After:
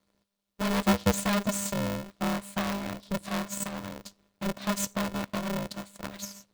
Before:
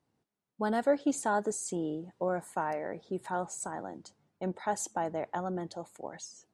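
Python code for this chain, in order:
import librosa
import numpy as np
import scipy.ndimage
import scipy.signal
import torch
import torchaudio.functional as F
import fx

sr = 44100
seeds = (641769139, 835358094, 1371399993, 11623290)

y = np.maximum(x, 0.0)
y = fx.graphic_eq_15(y, sr, hz=(160, 630, 1600, 4000), db=(-7, -11, -7, 6))
y = y * np.sign(np.sin(2.0 * np.pi * 200.0 * np.arange(len(y)) / sr))
y = F.gain(torch.from_numpy(y), 9.0).numpy()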